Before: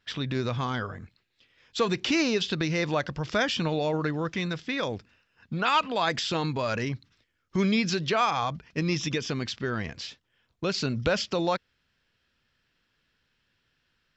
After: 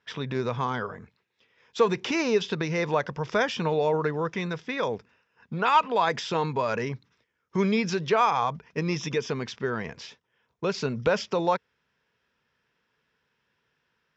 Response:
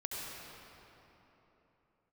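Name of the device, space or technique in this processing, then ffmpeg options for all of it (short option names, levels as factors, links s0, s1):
car door speaker: -af "highpass=91,equalizer=f=97:t=q:w=4:g=-7,equalizer=f=300:t=q:w=4:g=-5,equalizer=f=440:t=q:w=4:g=7,equalizer=f=950:t=q:w=4:g=7,equalizer=f=3000:t=q:w=4:g=-4,equalizer=f=4300:t=q:w=4:g=-9,lowpass=f=6600:w=0.5412,lowpass=f=6600:w=1.3066"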